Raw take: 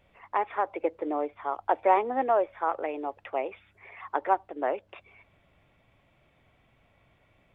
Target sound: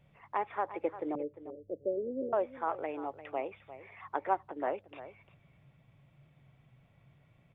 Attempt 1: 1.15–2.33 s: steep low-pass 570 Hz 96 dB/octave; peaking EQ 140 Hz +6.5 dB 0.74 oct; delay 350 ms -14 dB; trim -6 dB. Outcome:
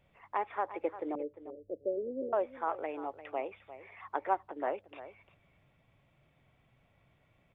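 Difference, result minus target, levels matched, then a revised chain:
125 Hz band -6.0 dB
1.15–2.33 s: steep low-pass 570 Hz 96 dB/octave; peaking EQ 140 Hz +17.5 dB 0.74 oct; delay 350 ms -14 dB; trim -6 dB

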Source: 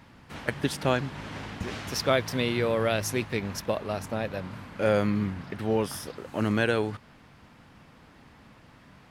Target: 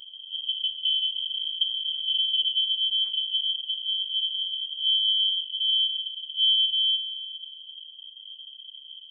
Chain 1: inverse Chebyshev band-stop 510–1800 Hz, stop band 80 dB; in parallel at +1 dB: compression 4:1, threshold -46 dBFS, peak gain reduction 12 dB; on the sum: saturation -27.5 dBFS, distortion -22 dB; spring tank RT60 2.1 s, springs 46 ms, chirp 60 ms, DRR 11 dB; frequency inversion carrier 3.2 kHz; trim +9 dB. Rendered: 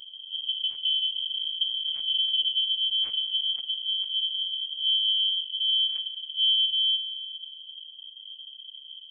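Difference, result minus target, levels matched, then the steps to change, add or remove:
saturation: distortion +16 dB
change: saturation -18.5 dBFS, distortion -37 dB

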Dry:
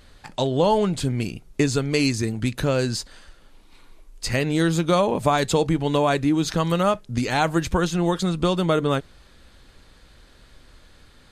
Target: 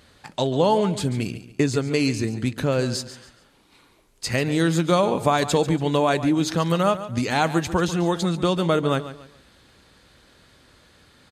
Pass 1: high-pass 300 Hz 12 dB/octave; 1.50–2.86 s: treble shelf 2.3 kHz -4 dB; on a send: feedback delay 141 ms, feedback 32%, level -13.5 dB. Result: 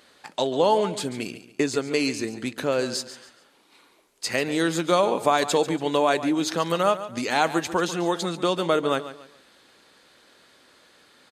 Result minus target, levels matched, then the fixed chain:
125 Hz band -9.5 dB
high-pass 86 Hz 12 dB/octave; 1.50–2.86 s: treble shelf 2.3 kHz -4 dB; on a send: feedback delay 141 ms, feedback 32%, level -13.5 dB

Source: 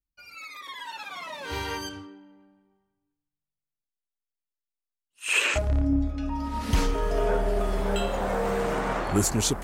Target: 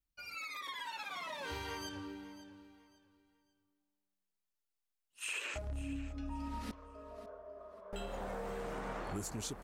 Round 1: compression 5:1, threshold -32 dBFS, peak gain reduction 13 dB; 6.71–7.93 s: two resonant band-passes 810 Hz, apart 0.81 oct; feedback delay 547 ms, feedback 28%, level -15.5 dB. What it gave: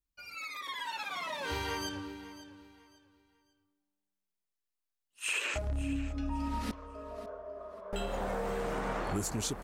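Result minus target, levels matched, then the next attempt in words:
compression: peak gain reduction -7 dB
compression 5:1, threshold -40.5 dBFS, peak gain reduction 20 dB; 6.71–7.93 s: two resonant band-passes 810 Hz, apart 0.81 oct; feedback delay 547 ms, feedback 28%, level -15.5 dB

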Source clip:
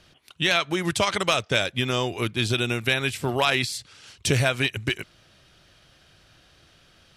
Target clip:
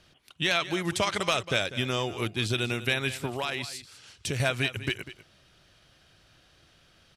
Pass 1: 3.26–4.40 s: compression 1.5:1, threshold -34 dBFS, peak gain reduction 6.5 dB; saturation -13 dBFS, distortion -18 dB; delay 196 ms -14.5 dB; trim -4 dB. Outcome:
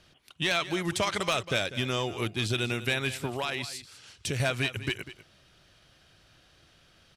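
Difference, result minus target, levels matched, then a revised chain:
saturation: distortion +20 dB
3.26–4.40 s: compression 1.5:1, threshold -34 dBFS, peak gain reduction 6.5 dB; saturation -1.5 dBFS, distortion -38 dB; delay 196 ms -14.5 dB; trim -4 dB

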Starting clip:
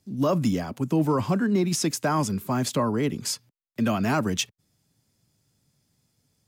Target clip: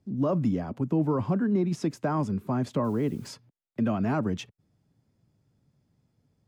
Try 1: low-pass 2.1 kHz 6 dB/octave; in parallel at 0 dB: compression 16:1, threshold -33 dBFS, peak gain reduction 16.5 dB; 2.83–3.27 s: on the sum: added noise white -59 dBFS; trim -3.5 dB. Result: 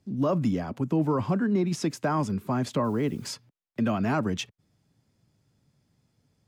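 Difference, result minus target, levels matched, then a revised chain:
2 kHz band +4.0 dB
low-pass 830 Hz 6 dB/octave; in parallel at 0 dB: compression 16:1, threshold -33 dBFS, peak gain reduction 16 dB; 2.83–3.27 s: on the sum: added noise white -59 dBFS; trim -3.5 dB

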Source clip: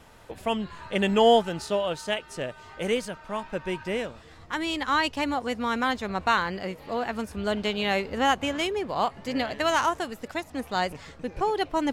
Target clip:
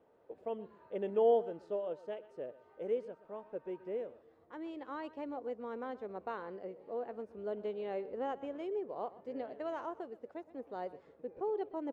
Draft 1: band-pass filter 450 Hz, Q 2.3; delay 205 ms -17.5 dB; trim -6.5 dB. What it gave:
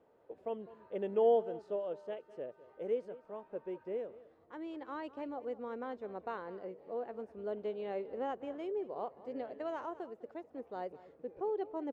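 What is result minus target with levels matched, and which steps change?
echo 81 ms late
change: delay 124 ms -17.5 dB

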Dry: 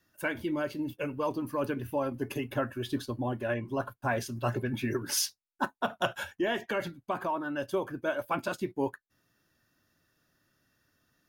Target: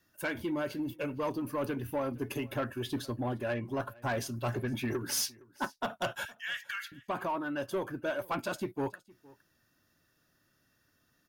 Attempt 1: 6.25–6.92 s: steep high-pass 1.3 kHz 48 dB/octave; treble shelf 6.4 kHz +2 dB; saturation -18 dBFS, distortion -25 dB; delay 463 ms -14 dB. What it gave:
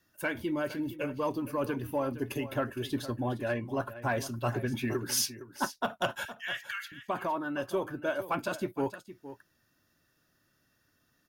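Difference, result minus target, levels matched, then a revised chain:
saturation: distortion -11 dB; echo-to-direct +9.5 dB
6.25–6.92 s: steep high-pass 1.3 kHz 48 dB/octave; treble shelf 6.4 kHz +2 dB; saturation -26 dBFS, distortion -14 dB; delay 463 ms -23.5 dB

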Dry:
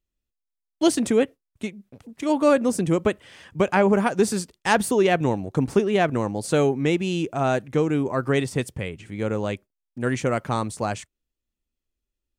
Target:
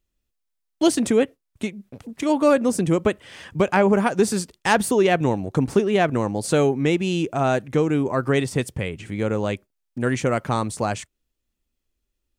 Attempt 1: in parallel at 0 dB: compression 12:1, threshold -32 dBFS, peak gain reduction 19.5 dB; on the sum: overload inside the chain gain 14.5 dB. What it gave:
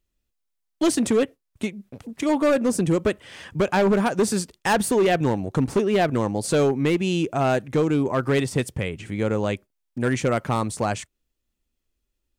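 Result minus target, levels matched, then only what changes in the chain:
overload inside the chain: distortion +25 dB
change: overload inside the chain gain 7 dB

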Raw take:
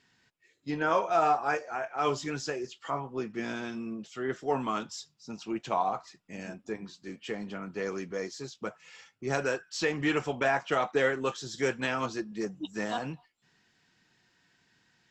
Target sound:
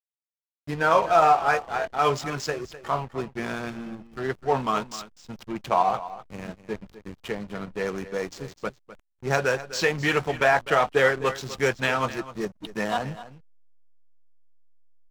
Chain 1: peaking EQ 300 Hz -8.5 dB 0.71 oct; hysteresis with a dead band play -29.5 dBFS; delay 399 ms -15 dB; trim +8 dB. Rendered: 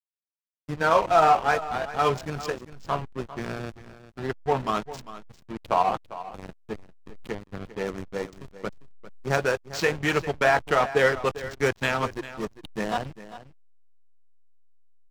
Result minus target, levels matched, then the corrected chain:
echo 146 ms late; hysteresis with a dead band: distortion +6 dB
peaking EQ 300 Hz -8.5 dB 0.71 oct; hysteresis with a dead band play -36 dBFS; delay 253 ms -15 dB; trim +8 dB

